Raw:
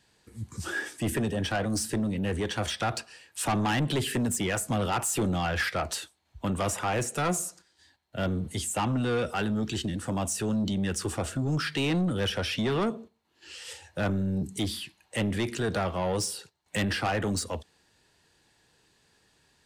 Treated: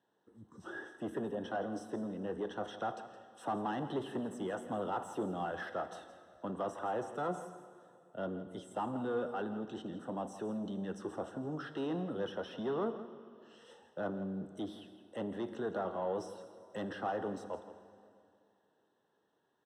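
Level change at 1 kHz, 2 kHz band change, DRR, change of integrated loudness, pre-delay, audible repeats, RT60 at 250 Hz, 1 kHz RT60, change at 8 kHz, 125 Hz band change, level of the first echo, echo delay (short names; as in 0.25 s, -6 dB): -7.0 dB, -14.5 dB, 9.5 dB, -10.0 dB, 4 ms, 1, 2.5 s, 2.4 s, -27.0 dB, -17.0 dB, -14.0 dB, 0.166 s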